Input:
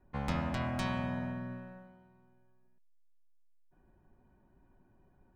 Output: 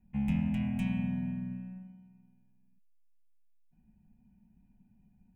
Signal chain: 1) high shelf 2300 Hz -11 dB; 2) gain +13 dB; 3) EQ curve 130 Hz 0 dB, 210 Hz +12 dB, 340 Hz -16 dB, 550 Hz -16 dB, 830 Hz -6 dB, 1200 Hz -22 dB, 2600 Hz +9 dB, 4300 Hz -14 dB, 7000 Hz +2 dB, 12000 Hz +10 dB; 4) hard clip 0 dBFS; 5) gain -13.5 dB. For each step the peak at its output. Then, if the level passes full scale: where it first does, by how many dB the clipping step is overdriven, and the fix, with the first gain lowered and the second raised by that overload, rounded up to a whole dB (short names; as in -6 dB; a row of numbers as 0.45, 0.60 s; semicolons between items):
-21.0, -8.0, -5.5, -5.5, -19.0 dBFS; no overload